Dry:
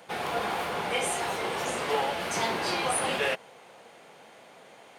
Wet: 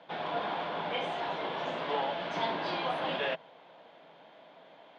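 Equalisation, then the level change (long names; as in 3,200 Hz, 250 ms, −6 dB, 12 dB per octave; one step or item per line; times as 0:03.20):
loudspeaker in its box 100–4,300 Hz, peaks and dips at 160 Hz +9 dB, 290 Hz +9 dB, 630 Hz +10 dB, 970 Hz +7 dB, 1,600 Hz +4 dB, 3,400 Hz +8 dB
mains-hum notches 50/100/150 Hz
−9.0 dB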